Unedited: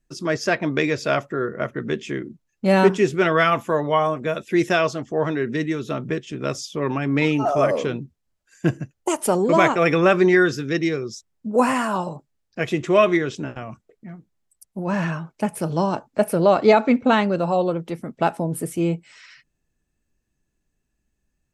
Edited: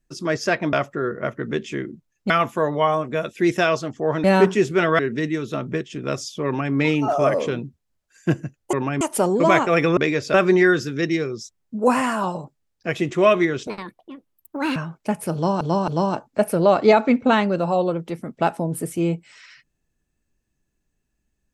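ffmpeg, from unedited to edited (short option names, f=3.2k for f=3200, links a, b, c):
-filter_complex "[0:a]asplit=13[a][b][c][d][e][f][g][h][i][j][k][l][m];[a]atrim=end=0.732[n];[b]atrim=start=1.098:end=2.672[o];[c]atrim=start=3.418:end=5.362[p];[d]atrim=start=2.668:end=3.422[q];[e]atrim=start=5.358:end=9.102[r];[f]atrim=start=6.818:end=7.102[s];[g]atrim=start=9.098:end=10.062[t];[h]atrim=start=0.728:end=1.102[u];[i]atrim=start=10.058:end=13.394[v];[j]atrim=start=13.39:end=15.1,asetpts=PTS-STARTPTS,asetrate=69237,aresample=44100,atrim=end_sample=48032,asetpts=PTS-STARTPTS[w];[k]atrim=start=15.096:end=15.952[x];[l]atrim=start=15.678:end=15.952[y];[m]atrim=start=15.678[z];[n][o]acrossfade=d=0.004:c1=hsin:c2=hsin[aa];[aa][p]acrossfade=d=0.004:c1=hsin:c2=hsin[ab];[ab][q]acrossfade=d=0.004:c1=hsin:c2=hsin[ac];[ac][r]acrossfade=d=0.004:c1=hsin:c2=hsin[ad];[ad][s]acrossfade=d=0.004:c1=hsin:c2=hsin[ae];[ae][t]acrossfade=d=0.004:c1=hsin:c2=hsin[af];[af][u]acrossfade=d=0.004:c1=hsin:c2=hsin[ag];[ag][v]acrossfade=d=0.004:c1=hsin:c2=hsin[ah];[ah][w]acrossfade=d=0.004:c1=hsin:c2=hsin[ai];[ai][x]acrossfade=d=0.004:c1=hsin:c2=hsin[aj];[aj][y]acrossfade=d=0.004:c1=hsin:c2=hsin[ak];[ak][z]acrossfade=d=0.004:c1=hsin:c2=hsin"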